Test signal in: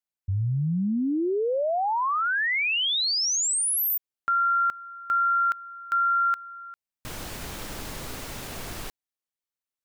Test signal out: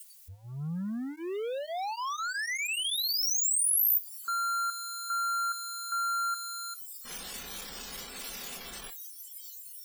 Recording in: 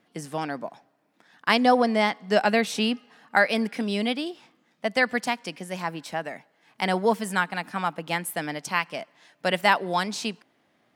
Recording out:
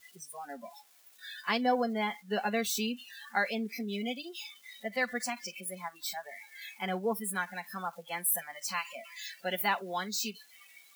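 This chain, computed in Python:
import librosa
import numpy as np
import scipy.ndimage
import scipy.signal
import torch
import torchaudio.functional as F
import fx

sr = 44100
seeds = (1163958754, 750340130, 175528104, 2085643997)

y = x + 0.5 * 10.0 ** (-15.0 / 20.0) * np.diff(np.sign(x), prepend=np.sign(x[:1]))
y = fx.noise_reduce_blind(y, sr, reduce_db=24)
y = fx.notch_comb(y, sr, f0_hz=310.0)
y = F.gain(torch.from_numpy(y), -8.5).numpy()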